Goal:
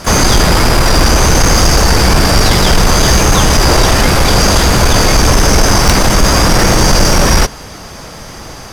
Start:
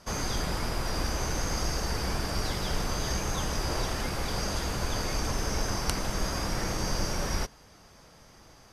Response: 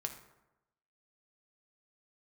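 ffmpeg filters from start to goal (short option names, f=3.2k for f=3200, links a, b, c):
-filter_complex "[0:a]asplit=2[a][b];[b]asetrate=66075,aresample=44100,atempo=0.66742,volume=-14dB[c];[a][c]amix=inputs=2:normalize=0,apsyclip=19dB,acontrast=82,volume=-1dB"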